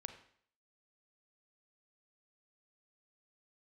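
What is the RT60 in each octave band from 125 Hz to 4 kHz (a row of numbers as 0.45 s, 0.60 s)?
0.55 s, 0.55 s, 0.60 s, 0.60 s, 0.60 s, 0.55 s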